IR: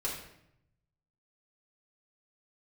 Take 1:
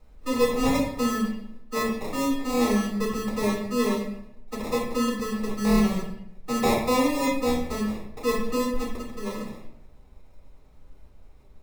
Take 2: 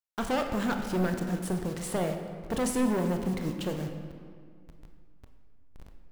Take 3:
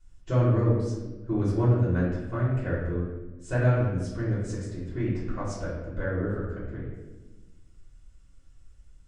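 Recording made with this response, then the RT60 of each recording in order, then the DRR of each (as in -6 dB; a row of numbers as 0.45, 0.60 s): 1; 0.75, 2.0, 1.2 s; -6.0, 4.0, -10.5 dB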